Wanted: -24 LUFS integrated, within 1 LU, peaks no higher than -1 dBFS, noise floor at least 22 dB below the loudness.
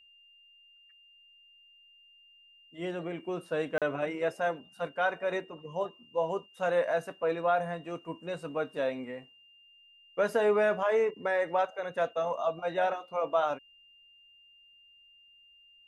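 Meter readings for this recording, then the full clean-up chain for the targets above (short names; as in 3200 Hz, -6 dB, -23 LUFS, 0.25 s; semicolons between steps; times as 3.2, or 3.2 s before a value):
dropouts 1; longest dropout 37 ms; steady tone 2800 Hz; tone level -57 dBFS; loudness -31.5 LUFS; peak -16.0 dBFS; loudness target -24.0 LUFS
-> interpolate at 3.78, 37 ms; notch 2800 Hz, Q 30; gain +7.5 dB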